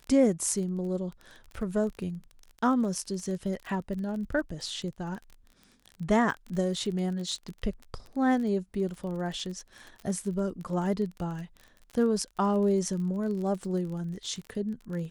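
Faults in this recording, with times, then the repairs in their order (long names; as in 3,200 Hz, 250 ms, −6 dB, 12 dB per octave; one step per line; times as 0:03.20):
surface crackle 28 per second −36 dBFS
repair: click removal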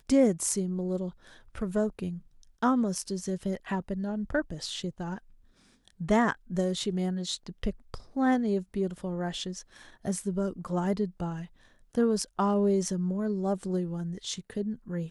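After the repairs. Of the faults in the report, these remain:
none of them is left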